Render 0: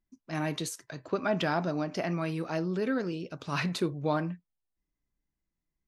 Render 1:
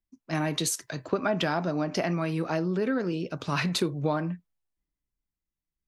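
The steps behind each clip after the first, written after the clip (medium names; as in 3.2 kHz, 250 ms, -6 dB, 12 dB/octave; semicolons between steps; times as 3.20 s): compression 4:1, threshold -33 dBFS, peak gain reduction 8.5 dB; three bands expanded up and down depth 40%; trim +8.5 dB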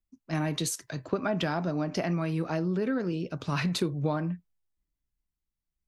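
bass shelf 180 Hz +7.5 dB; trim -3.5 dB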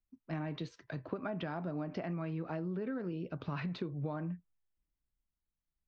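compression 3:1, threshold -33 dBFS, peak gain reduction 8.5 dB; Gaussian low-pass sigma 2.5 samples; trim -3 dB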